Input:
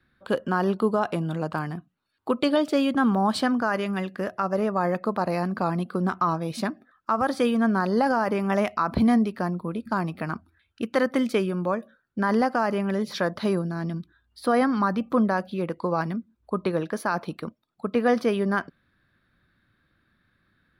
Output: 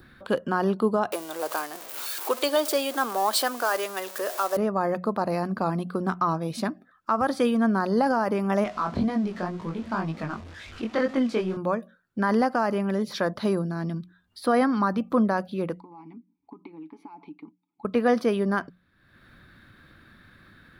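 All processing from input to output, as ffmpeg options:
ffmpeg -i in.wav -filter_complex "[0:a]asettb=1/sr,asplit=3[link_01][link_02][link_03];[link_01]atrim=end=1.124[link_04];[link_02]atrim=start=1.12:end=4.57,asetpts=PTS-STARTPTS,afade=type=in:duration=0.004:curve=qsin,afade=type=out:start_time=3.446:duration=0.004:curve=qsin,aeval=exprs='val(0)+0.5*0.0237*sgn(val(0))':channel_layout=same,highpass=frequency=390:width=0.5412,highpass=frequency=390:width=1.3066,aemphasis=mode=production:type=50kf[link_05];[link_03]atrim=start=4.566[link_06];[link_04][link_05]acrossfade=duration=0.004:curve1=hsin:curve2=qsin[link_07];[link_07][link_06]acrossfade=duration=0.004:curve1=qsin:curve2=hsin,asettb=1/sr,asplit=3[link_08][link_09][link_10];[link_08]atrim=end=8.644[link_11];[link_09]atrim=start=8.64:end=11.57,asetpts=PTS-STARTPTS,afade=type=in:duration=0.004:curve=qsin,afade=type=out:start_time=2.926:duration=0.004:curve=qsin,aeval=exprs='val(0)+0.5*0.0188*sgn(val(0))':channel_layout=same,lowpass=5600,flanger=delay=18.5:depth=4.4:speed=2[link_12];[link_10]atrim=start=11.566[link_13];[link_11][link_12]acrossfade=duration=0.004:curve1=hsin:curve2=qsin[link_14];[link_14][link_13]acrossfade=duration=0.004:curve1=qsin:curve2=hsin,asettb=1/sr,asplit=3[link_15][link_16][link_17];[link_15]atrim=end=15.804[link_18];[link_16]atrim=start=15.8:end=17.85,asetpts=PTS-STARTPTS,afade=type=in:duration=0.004:curve=qsin,afade=type=out:start_time=2.046:duration=0.004:curve=qsin,aecho=1:1:7.1:0.39,atrim=end_sample=90405,acompressor=threshold=-29dB:ratio=6:attack=3.2:release=140:knee=1:detection=peak,asplit=3[link_19][link_20][link_21];[link_19]bandpass=frequency=300:width_type=q:width=8,volume=0dB[link_22];[link_20]bandpass=frequency=870:width_type=q:width=8,volume=-6dB[link_23];[link_21]bandpass=frequency=2240:width_type=q:width=8,volume=-9dB[link_24];[link_22][link_23][link_24]amix=inputs=3:normalize=0[link_25];[link_17]atrim=start=17.846[link_26];[link_18][link_25]acrossfade=duration=0.004:curve1=hsin:curve2=qsin[link_27];[link_27][link_26]acrossfade=duration=0.004:curve1=qsin:curve2=hsin,bandreject=frequency=60:width_type=h:width=6,bandreject=frequency=120:width_type=h:width=6,bandreject=frequency=180:width_type=h:width=6,adynamicequalizer=threshold=0.00708:dfrequency=2300:dqfactor=0.99:tfrequency=2300:tqfactor=0.99:attack=5:release=100:ratio=0.375:range=2:mode=cutabove:tftype=bell,acompressor=mode=upward:threshold=-39dB:ratio=2.5" out.wav

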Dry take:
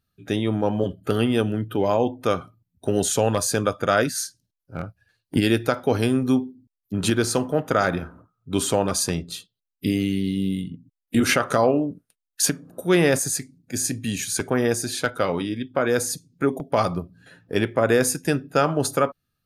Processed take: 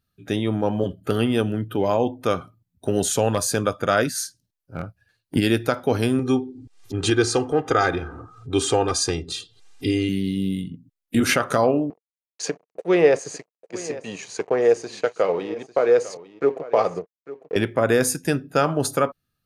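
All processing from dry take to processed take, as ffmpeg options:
ffmpeg -i in.wav -filter_complex "[0:a]asettb=1/sr,asplit=3[link_01][link_02][link_03];[link_01]atrim=end=6.194[link_04];[link_02]atrim=start=6.19:end=10.09,asetpts=PTS-STARTPTS,afade=type=in:duration=0.004:curve=qsin,afade=type=out:start_time=3.896:duration=0.004:curve=qsin,lowpass=frequency=8400:width=0.5412,lowpass=frequency=8400:width=1.3066,acompressor=mode=upward:threshold=-25dB:ratio=2.5:attack=3.2:release=140:knee=2.83:detection=peak,aecho=1:1:2.5:0.75,atrim=end_sample=171990[link_05];[link_03]atrim=start=10.086[link_06];[link_04][link_05]acrossfade=duration=0.004:curve1=hsin:curve2=qsin[link_07];[link_07][link_06]acrossfade=duration=0.004:curve1=qsin:curve2=hsin,asettb=1/sr,asplit=3[link_08][link_09][link_10];[link_08]atrim=end=11.904[link_11];[link_09]atrim=start=11.9:end=17.56,asetpts=PTS-STARTPTS,afade=type=in:duration=0.004:curve=qsin,afade=type=out:start_time=5.656:duration=0.004:curve=qsin,aeval=exprs='sgn(val(0))*max(abs(val(0))-0.0119,0)':channel_layout=same,highpass=230,equalizer=frequency=250:width_type=q:width=4:gain=-9,equalizer=frequency=460:width_type=q:width=4:gain=10,equalizer=frequency=710:width_type=q:width=4:gain=3,equalizer=frequency=1500:width_type=q:width=4:gain=-6,equalizer=frequency=3500:width_type=q:width=4:gain=-9,equalizer=frequency=5100:width_type=q:width=4:gain=-6,lowpass=frequency=5800:width=0.5412,lowpass=frequency=5800:width=1.3066,aecho=1:1:849:0.15,atrim=end_sample=249606[link_12];[link_10]atrim=start=17.556[link_13];[link_11][link_12]acrossfade=duration=0.004:curve1=hsin:curve2=qsin[link_14];[link_14][link_13]acrossfade=duration=0.004:curve1=qsin:curve2=hsin" out.wav

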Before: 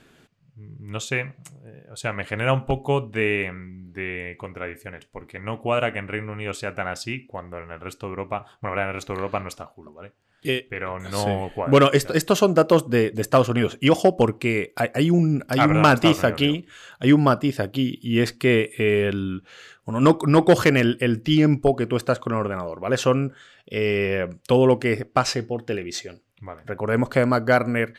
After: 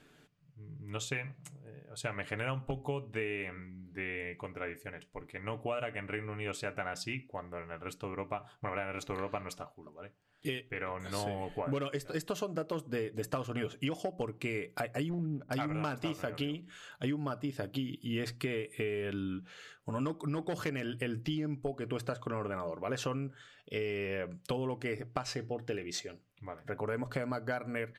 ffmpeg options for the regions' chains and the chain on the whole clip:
ffmpeg -i in.wav -filter_complex "[0:a]asettb=1/sr,asplit=3[link_01][link_02][link_03];[link_01]atrim=end=15.094[link_04];[link_02]atrim=start=15.09:end=15.51,asetpts=PTS-STARTPTS,afade=type=in:duration=0.004:curve=qsin,afade=type=out:start_time=0.416:duration=0.004:curve=qsin,lowpass=1500,aeval=exprs='clip(val(0),-1,0.158)':channel_layout=same,adynamicsmooth=sensitivity=6:basefreq=1100[link_05];[link_03]atrim=start=15.506[link_06];[link_04][link_05]acrossfade=duration=0.004:curve1=hsin:curve2=qsin[link_07];[link_07][link_06]acrossfade=duration=0.004:curve1=qsin:curve2=hsin,bandreject=frequency=60:width_type=h:width=6,bandreject=frequency=120:width_type=h:width=6,bandreject=frequency=180:width_type=h:width=6,aecho=1:1:6.8:0.37,acompressor=threshold=-24dB:ratio=12,volume=-7.5dB" out.wav

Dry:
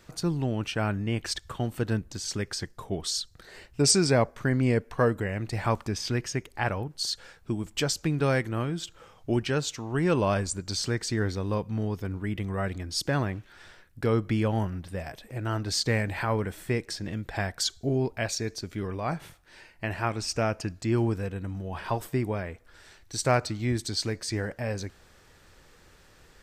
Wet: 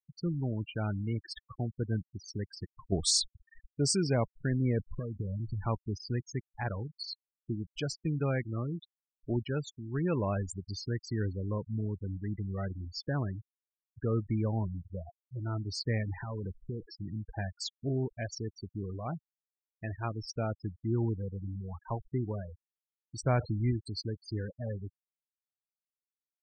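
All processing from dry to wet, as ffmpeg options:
ffmpeg -i in.wav -filter_complex "[0:a]asettb=1/sr,asplit=3[link_01][link_02][link_03];[link_01]atrim=end=2.924[link_04];[link_02]atrim=start=2.92:end=3.67,asetpts=PTS-STARTPTS,afade=type=in:duration=0.004:curve=qsin,afade=type=out:start_time=0.746:duration=0.004:curve=qsin,highshelf=frequency=5100:gain=9,acontrast=89[link_05];[link_03]atrim=start=3.666[link_06];[link_04][link_05]acrossfade=duration=0.004:curve1=hsin:curve2=qsin[link_07];[link_07][link_06]acrossfade=duration=0.004:curve1=qsin:curve2=hsin,asettb=1/sr,asplit=3[link_08][link_09][link_10];[link_08]atrim=end=4.794[link_11];[link_09]atrim=start=4.79:end=5.65,asetpts=PTS-STARTPTS,afade=type=in:duration=0.004:curve=qsin,afade=type=out:start_time=0.856:duration=0.004:curve=qsin,lowshelf=frequency=320:gain=8,acompressor=threshold=-26dB:ratio=16:attack=3.2:release=140:knee=1:detection=peak[link_12];[link_10]atrim=start=5.646[link_13];[link_11][link_12]acrossfade=duration=0.004:curve1=hsin:curve2=qsin[link_14];[link_14][link_13]acrossfade=duration=0.004:curve1=qsin:curve2=hsin,asettb=1/sr,asplit=3[link_15][link_16][link_17];[link_15]atrim=end=16.034[link_18];[link_16]atrim=start=16.03:end=16.9,asetpts=PTS-STARTPTS,afade=type=in:duration=0.004:curve=qsin,afade=type=out:start_time=0.866:duration=0.004:curve=qsin,aeval=exprs='val(0)+0.5*0.0133*sgn(val(0))':channel_layout=same,acompressor=threshold=-27dB:ratio=8:attack=3.2:release=140:knee=1:detection=peak,lowpass=2000[link_19];[link_17]atrim=start=16.896[link_20];[link_18][link_19]acrossfade=duration=0.004:curve1=hsin:curve2=qsin[link_21];[link_21][link_20]acrossfade=duration=0.004:curve1=qsin:curve2=hsin,asettb=1/sr,asplit=3[link_22][link_23][link_24];[link_22]atrim=end=23.234[link_25];[link_23]atrim=start=23.23:end=23.71,asetpts=PTS-STARTPTS,afade=type=in:duration=0.004:curve=qsin,afade=type=out:start_time=0.476:duration=0.004:curve=qsin,aeval=exprs='val(0)+0.5*0.0299*sgn(val(0))':channel_layout=same,bass=frequency=250:gain=2,treble=frequency=4000:gain=-12[link_26];[link_24]atrim=start=23.706[link_27];[link_25][link_26]acrossfade=duration=0.004:curve1=hsin:curve2=qsin[link_28];[link_28][link_27]acrossfade=duration=0.004:curve1=qsin:curve2=hsin,afftfilt=real='re*gte(hypot(re,im),0.0631)':imag='im*gte(hypot(re,im),0.0631)':win_size=1024:overlap=0.75,lowshelf=frequency=200:gain=7,volume=-8.5dB" out.wav

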